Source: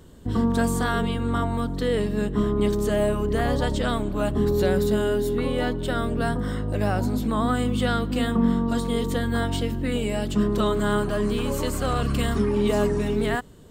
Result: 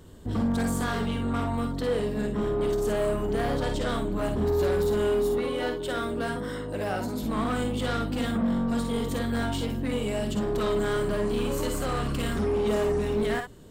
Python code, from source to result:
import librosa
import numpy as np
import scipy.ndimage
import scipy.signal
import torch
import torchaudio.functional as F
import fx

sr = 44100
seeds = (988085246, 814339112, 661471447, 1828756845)

y = fx.low_shelf(x, sr, hz=180.0, db=-11.5, at=(5.38, 7.23))
y = 10.0 ** (-22.0 / 20.0) * np.tanh(y / 10.0 ** (-22.0 / 20.0))
y = fx.room_early_taps(y, sr, ms=(51, 61), db=(-7.0, -9.0))
y = F.gain(torch.from_numpy(y), -1.5).numpy()